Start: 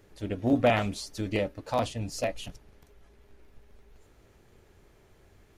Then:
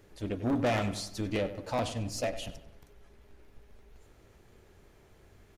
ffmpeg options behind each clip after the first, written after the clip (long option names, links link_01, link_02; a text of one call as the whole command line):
ffmpeg -i in.wav -filter_complex "[0:a]asoftclip=type=tanh:threshold=-24dB,asplit=2[link_01][link_02];[link_02]adelay=95,lowpass=frequency=3100:poles=1,volume=-12dB,asplit=2[link_03][link_04];[link_04]adelay=95,lowpass=frequency=3100:poles=1,volume=0.49,asplit=2[link_05][link_06];[link_06]adelay=95,lowpass=frequency=3100:poles=1,volume=0.49,asplit=2[link_07][link_08];[link_08]adelay=95,lowpass=frequency=3100:poles=1,volume=0.49,asplit=2[link_09][link_10];[link_10]adelay=95,lowpass=frequency=3100:poles=1,volume=0.49[link_11];[link_03][link_05][link_07][link_09][link_11]amix=inputs=5:normalize=0[link_12];[link_01][link_12]amix=inputs=2:normalize=0" out.wav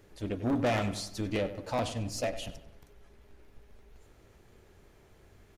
ffmpeg -i in.wav -af anull out.wav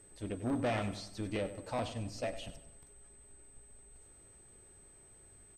ffmpeg -i in.wav -filter_complex "[0:a]acrossover=split=5400[link_01][link_02];[link_02]acompressor=threshold=-57dB:ratio=4:attack=1:release=60[link_03];[link_01][link_03]amix=inputs=2:normalize=0,aeval=exprs='val(0)+0.00224*sin(2*PI*8200*n/s)':channel_layout=same,volume=-5dB" out.wav